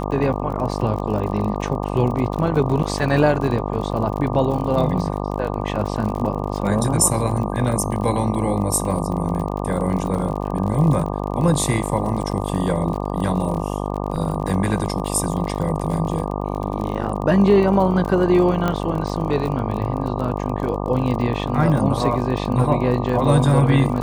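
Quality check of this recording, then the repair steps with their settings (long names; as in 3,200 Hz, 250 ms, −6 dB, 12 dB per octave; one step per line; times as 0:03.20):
mains buzz 50 Hz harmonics 24 −25 dBFS
surface crackle 41 per second −27 dBFS
0:14.16: drop-out 4 ms
0:18.68: click −9 dBFS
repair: click removal
hum removal 50 Hz, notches 24
repair the gap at 0:14.16, 4 ms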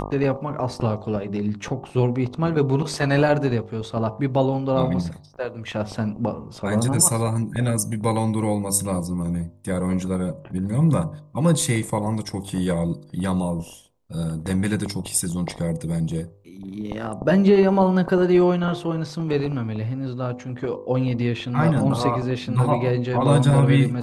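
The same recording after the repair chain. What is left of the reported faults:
none of them is left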